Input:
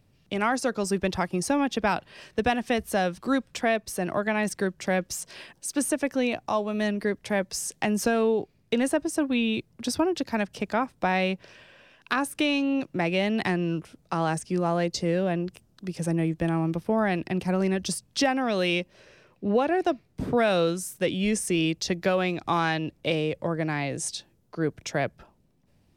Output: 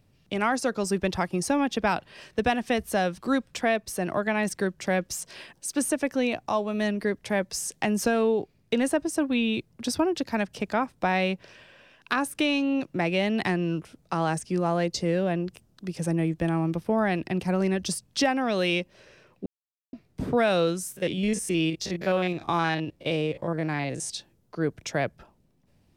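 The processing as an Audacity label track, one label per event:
19.460000	19.930000	mute
20.920000	24.100000	spectrogram pixelated in time every 50 ms

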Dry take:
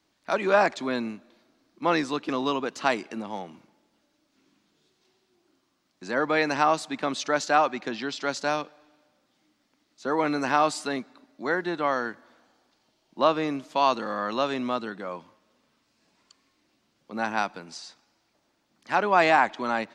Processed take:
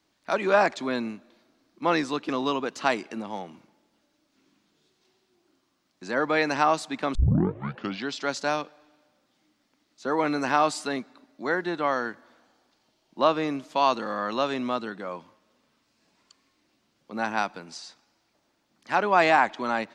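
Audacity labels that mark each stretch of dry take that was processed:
7.150000	7.150000	tape start 0.91 s

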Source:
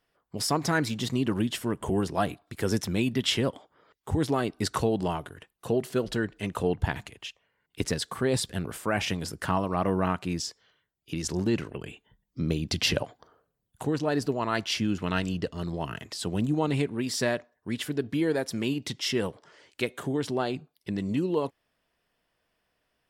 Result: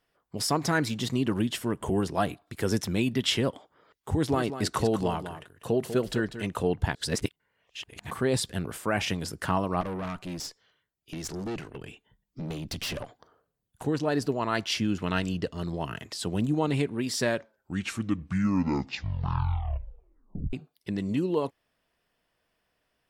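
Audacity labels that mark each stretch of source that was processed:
4.100000	6.420000	delay 195 ms -10.5 dB
6.950000	8.110000	reverse
9.810000	13.850000	valve stage drive 30 dB, bias 0.5
17.210000	17.210000	tape stop 3.32 s

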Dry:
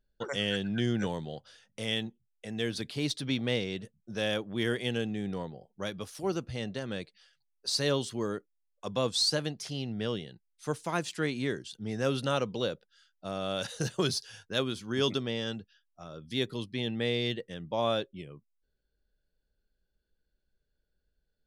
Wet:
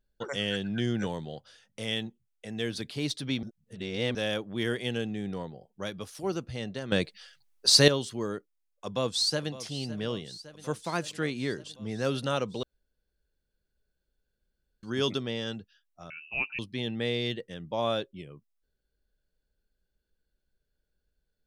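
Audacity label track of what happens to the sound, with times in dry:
3.430000	4.150000	reverse
6.920000	7.880000	gain +11 dB
8.850000	9.520000	echo throw 560 ms, feedback 75%, level -15.5 dB
12.630000	14.830000	room tone
16.100000	16.590000	frequency inversion carrier 2.8 kHz

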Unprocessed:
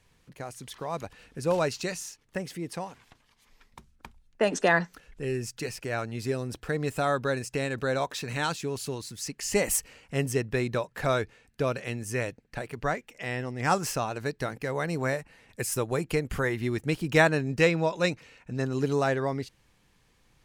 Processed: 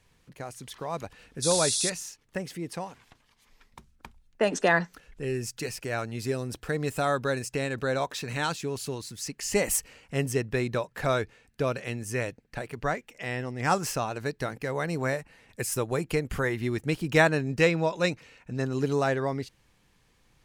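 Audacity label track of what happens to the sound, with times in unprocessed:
1.420000	1.900000	painted sound noise 3.3–11 kHz -28 dBFS
5.360000	7.510000	treble shelf 5.9 kHz +4 dB

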